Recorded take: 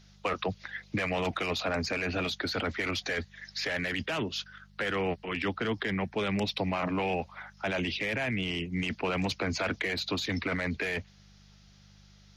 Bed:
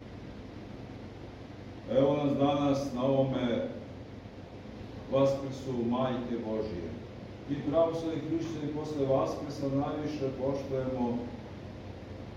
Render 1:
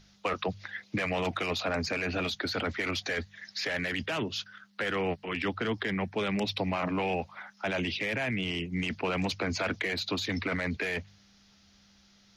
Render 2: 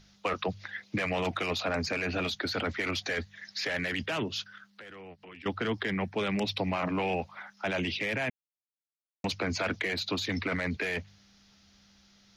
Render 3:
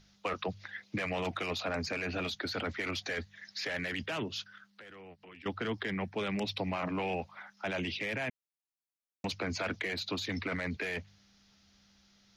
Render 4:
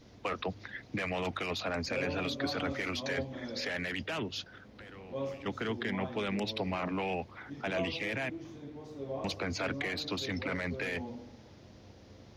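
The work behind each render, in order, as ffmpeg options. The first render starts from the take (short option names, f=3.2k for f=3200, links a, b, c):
-af "bandreject=f=50:t=h:w=4,bandreject=f=100:t=h:w=4,bandreject=f=150:t=h:w=4"
-filter_complex "[0:a]asettb=1/sr,asplit=3[a][b][c];[a]atrim=end=4.654[d];[b]atrim=start=4.65:end=5.46,asetpts=PTS-STARTPTS,afade=t=in:d=0.004:c=qsin,afade=t=out:st=0.806:d=0.004:c=qsin,acompressor=threshold=-50dB:ratio=3:attack=3.2:release=140:knee=1:detection=peak[e];[c]atrim=start=5.456[f];[d][e]acrossfade=d=0.004:c1=hsin:c2=qsin[g];[g][f]acrossfade=d=0.004:c1=qsin:c2=hsin,asplit=3[h][i][j];[h]atrim=end=8.3,asetpts=PTS-STARTPTS,afade=t=out:st=8.296:d=0.004:c=hsin[k];[i]atrim=start=8.3:end=9.24,asetpts=PTS-STARTPTS,volume=0[l];[j]atrim=start=9.24,asetpts=PTS-STARTPTS,afade=t=in:d=0.004:c=hsin[m];[k][l][m]concat=n=3:v=0:a=1"
-af "volume=-4dB"
-filter_complex "[1:a]volume=-11dB[a];[0:a][a]amix=inputs=2:normalize=0"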